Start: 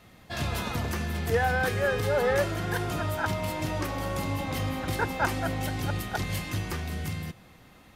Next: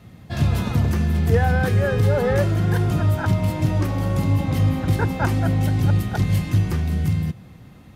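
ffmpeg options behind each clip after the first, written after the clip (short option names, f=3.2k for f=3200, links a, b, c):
-af "equalizer=f=120:w=0.45:g=14.5"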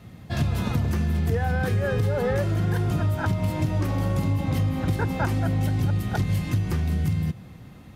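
-af "acompressor=threshold=-20dB:ratio=6"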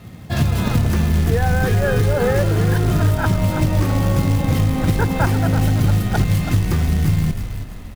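-filter_complex "[0:a]asplit=6[a][b][c][d][e][f];[b]adelay=330,afreqshift=-56,volume=-9dB[g];[c]adelay=660,afreqshift=-112,volume=-16.7dB[h];[d]adelay=990,afreqshift=-168,volume=-24.5dB[i];[e]adelay=1320,afreqshift=-224,volume=-32.2dB[j];[f]adelay=1650,afreqshift=-280,volume=-40dB[k];[a][g][h][i][j][k]amix=inputs=6:normalize=0,acrusher=bits=5:mode=log:mix=0:aa=0.000001,volume=6.5dB"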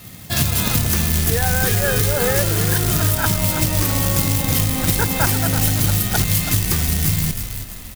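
-af "crystalizer=i=6.5:c=0,volume=-3.5dB"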